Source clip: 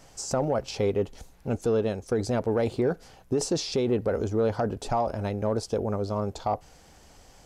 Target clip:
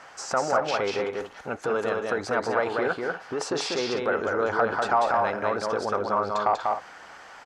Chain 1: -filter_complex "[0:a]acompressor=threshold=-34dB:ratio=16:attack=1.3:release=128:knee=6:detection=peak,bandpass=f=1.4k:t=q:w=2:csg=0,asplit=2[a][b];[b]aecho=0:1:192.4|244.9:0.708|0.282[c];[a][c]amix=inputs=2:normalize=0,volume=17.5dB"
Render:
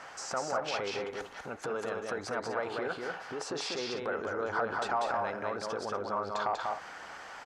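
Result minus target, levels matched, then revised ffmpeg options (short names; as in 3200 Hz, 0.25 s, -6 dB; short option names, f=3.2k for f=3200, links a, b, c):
compressor: peak gain reduction +9.5 dB
-filter_complex "[0:a]acompressor=threshold=-24dB:ratio=16:attack=1.3:release=128:knee=6:detection=peak,bandpass=f=1.4k:t=q:w=2:csg=0,asplit=2[a][b];[b]aecho=0:1:192.4|244.9:0.708|0.282[c];[a][c]amix=inputs=2:normalize=0,volume=17.5dB"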